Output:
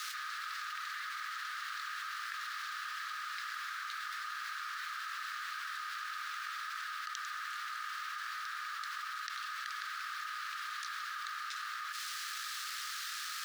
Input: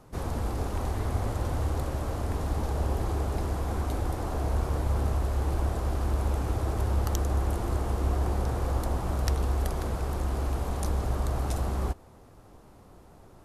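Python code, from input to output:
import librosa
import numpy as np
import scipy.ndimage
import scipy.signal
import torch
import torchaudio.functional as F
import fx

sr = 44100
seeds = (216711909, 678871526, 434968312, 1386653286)

y = scipy.signal.sosfilt(scipy.signal.butter(2, 3500.0, 'lowpass', fs=sr, output='sos'), x)
y = fx.quant_dither(y, sr, seeds[0], bits=10, dither='none')
y = scipy.signal.sosfilt(scipy.signal.cheby1(6, 6, 1200.0, 'highpass', fs=sr, output='sos'), y)
y = fx.env_flatten(y, sr, amount_pct=100)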